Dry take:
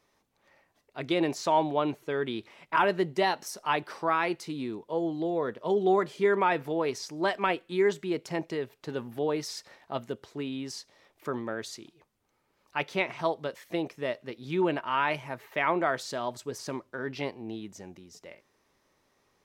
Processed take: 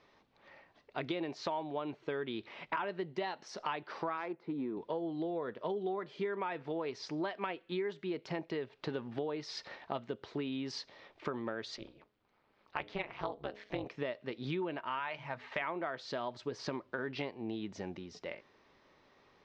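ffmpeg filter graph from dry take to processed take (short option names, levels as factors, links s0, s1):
-filter_complex "[0:a]asettb=1/sr,asplit=3[s0][s1][s2];[s0]atrim=end=4.174[s3];[s1]atrim=start=4.17:end=4.77,asetpts=PTS-STARTPTS,afade=t=in:d=0.004:c=qsin,afade=t=out:st=0.596:d=0.004:c=qsin,adynamicsmooth=sensitivity=1:basefreq=1200,highpass=180,lowpass=7400,bandreject=f=2900:w=12[s4];[s2]atrim=start=4.766[s5];[s3][s4]acrossfade=d=0.004:c1=hsin:c2=qsin[s6];[s6][s5]acrossfade=d=0.004:c1=qsin:c2=hsin,asettb=1/sr,asplit=3[s7][s8][s9];[s7]atrim=end=11.764[s10];[s8]atrim=start=11.76:end=13.86,asetpts=PTS-STARTPTS,afade=t=in:d=0.004:c=qsin,afade=t=out:st=2.096:d=0.004:c=qsin,highshelf=f=9200:g=-11,bandreject=f=60:t=h:w=6,bandreject=f=120:t=h:w=6,bandreject=f=180:t=h:w=6,bandreject=f=240:t=h:w=6,bandreject=f=300:t=h:w=6,bandreject=f=360:t=h:w=6,bandreject=f=420:t=h:w=6,bandreject=f=480:t=h:w=6,tremolo=f=210:d=0.947[s11];[s9]atrim=start=13.856[s12];[s10][s11]acrossfade=d=0.004:c1=hsin:c2=qsin[s13];[s13][s12]acrossfade=d=0.004:c1=qsin:c2=hsin,asettb=1/sr,asplit=3[s14][s15][s16];[s14]atrim=end=14.994[s17];[s15]atrim=start=14.99:end=15.62,asetpts=PTS-STARTPTS,afade=t=in:d=0.004:c=qsin,afade=t=out:st=0.626:d=0.004:c=qsin,equalizer=f=340:w=1.8:g=-10.5,bandreject=f=50:t=h:w=6,bandreject=f=100:t=h:w=6,bandreject=f=150:t=h:w=6,bandreject=f=200:t=h:w=6,bandreject=f=250:t=h:w=6,bandreject=f=300:t=h:w=6[s18];[s16]atrim=start=15.616[s19];[s17][s18]acrossfade=d=0.004:c1=hsin:c2=qsin[s20];[s20][s19]acrossfade=d=0.004:c1=qsin:c2=hsin,lowpass=f=4500:w=0.5412,lowpass=f=4500:w=1.3066,lowshelf=f=130:g=-4,acompressor=threshold=0.01:ratio=8,volume=1.88"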